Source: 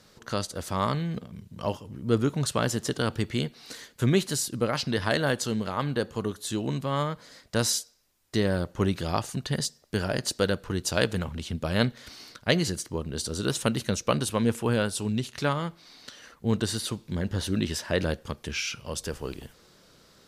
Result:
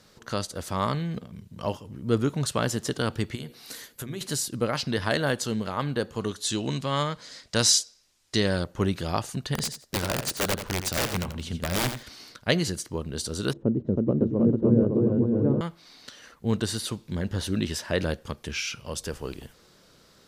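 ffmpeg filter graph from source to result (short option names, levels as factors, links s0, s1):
-filter_complex "[0:a]asettb=1/sr,asplit=3[s0][s1][s2];[s0]atrim=end=3.354[s3];[s1]atrim=start=3.35:end=4.21,asetpts=PTS-STARTPTS,afade=t=in:d=0.004:c=qsin,afade=t=out:st=0.856:d=0.004:c=qsin,equalizer=f=12000:w=1.3:g=13,acompressor=threshold=0.0251:ratio=5:attack=3.2:release=140:knee=1:detection=peak,bandreject=f=60:t=h:w=6,bandreject=f=120:t=h:w=6,bandreject=f=180:t=h:w=6,bandreject=f=240:t=h:w=6,bandreject=f=300:t=h:w=6,bandreject=f=360:t=h:w=6,bandreject=f=420:t=h:w=6,bandreject=f=480:t=h:w=6,bandreject=f=540:t=h:w=6[s4];[s2]atrim=start=4.206[s5];[s3][s4]acrossfade=d=0.004:c1=hsin:c2=qsin[s6];[s6][s5]acrossfade=d=0.004:c1=qsin:c2=hsin,asettb=1/sr,asplit=3[s7][s8][s9];[s7]atrim=end=6.214[s10];[s8]atrim=start=6.21:end=8.64,asetpts=PTS-STARTPTS,afade=t=in:d=0.004:c=qsin,afade=t=out:st=2.426:d=0.004:c=qsin,lowpass=6600,highshelf=f=2900:g=12[s11];[s9]atrim=start=8.636[s12];[s10][s11]acrossfade=d=0.004:c1=hsin:c2=qsin[s13];[s13][s12]acrossfade=d=0.004:c1=qsin:c2=hsin,asettb=1/sr,asplit=3[s14][s15][s16];[s14]atrim=end=9.544[s17];[s15]atrim=start=9.54:end=12.03,asetpts=PTS-STARTPTS,afade=t=in:d=0.004:c=qsin,afade=t=out:st=2.486:d=0.004:c=qsin,aeval=exprs='(mod(9.44*val(0)+1,2)-1)/9.44':c=same,aecho=1:1:86|172:0.355|0.0568,atrim=end_sample=109809[s18];[s16]atrim=start=12.026[s19];[s17][s18]acrossfade=d=0.004:c1=hsin:c2=qsin[s20];[s20][s19]acrossfade=d=0.004:c1=qsin:c2=hsin,asettb=1/sr,asplit=3[s21][s22][s23];[s21]atrim=end=13.534[s24];[s22]atrim=start=13.53:end=15.61,asetpts=PTS-STARTPTS,afade=t=in:d=0.004:c=qsin,afade=t=out:st=2.076:d=0.004:c=qsin,lowpass=f=360:t=q:w=2,aecho=1:1:320|560|740|875|976.2:0.794|0.631|0.501|0.398|0.316,atrim=end_sample=91728[s25];[s23]atrim=start=15.606[s26];[s24][s25]acrossfade=d=0.004:c1=hsin:c2=qsin[s27];[s27][s26]acrossfade=d=0.004:c1=qsin:c2=hsin"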